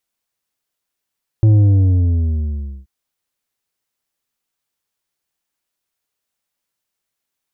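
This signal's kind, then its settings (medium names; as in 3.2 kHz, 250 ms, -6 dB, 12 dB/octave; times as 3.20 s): sub drop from 110 Hz, over 1.43 s, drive 7 dB, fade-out 1.36 s, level -8 dB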